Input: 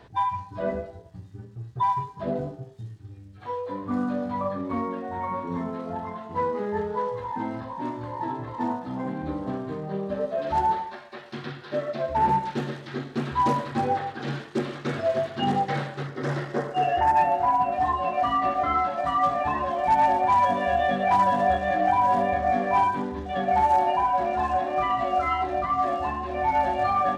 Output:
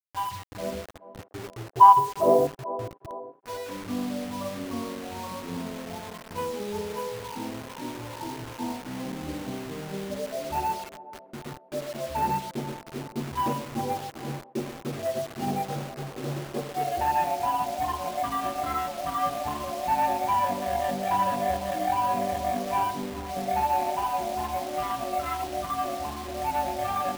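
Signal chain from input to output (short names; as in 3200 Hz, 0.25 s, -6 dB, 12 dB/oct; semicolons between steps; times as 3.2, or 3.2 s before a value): Wiener smoothing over 25 samples; 1.19–2.47 band shelf 660 Hz +16 dB 2.5 oct; requantised 6-bit, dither none; on a send: band-limited delay 0.424 s, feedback 53%, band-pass 480 Hz, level -15 dB; on the sum: gain -3.5 dB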